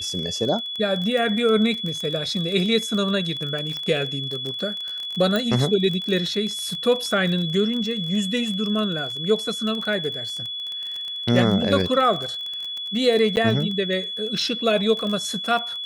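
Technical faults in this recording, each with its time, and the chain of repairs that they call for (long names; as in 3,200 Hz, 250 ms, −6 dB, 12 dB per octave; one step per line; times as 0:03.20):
surface crackle 27 per second −26 dBFS
whistle 3,400 Hz −28 dBFS
0:03.77: click −17 dBFS
0:05.36: click −10 dBFS
0:13.36–0:13.37: drop-out 9.7 ms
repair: click removal
notch filter 3,400 Hz, Q 30
repair the gap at 0:13.36, 9.7 ms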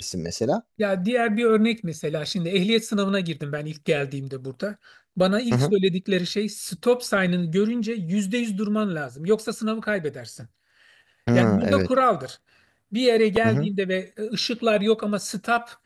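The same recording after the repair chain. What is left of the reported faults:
none of them is left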